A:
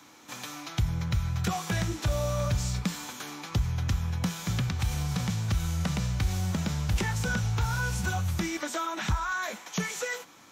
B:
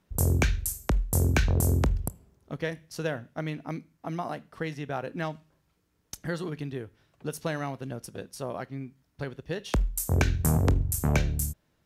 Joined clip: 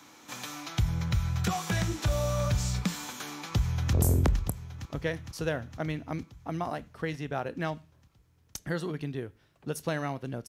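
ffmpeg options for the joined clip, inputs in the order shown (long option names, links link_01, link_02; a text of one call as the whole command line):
ffmpeg -i cue0.wav -i cue1.wav -filter_complex "[0:a]apad=whole_dur=10.48,atrim=end=10.48,atrim=end=3.932[link_01];[1:a]atrim=start=1.508:end=8.06[link_02];[link_01][link_02]acrossfade=duration=0.004:curve1=hsin:curve2=hsin,asplit=2[link_03][link_04];[link_04]afade=type=in:start_time=3.4:duration=0.01,afade=type=out:start_time=3.93:duration=0.01,aecho=0:1:460|920|1380|1840|2300|2760|3220|3680|4140|4600:0.334965|0.234476|0.164133|0.114893|0.0804252|0.0562976|0.0394083|0.0275858|0.0193101|0.0135171[link_05];[link_03][link_05]amix=inputs=2:normalize=0" out.wav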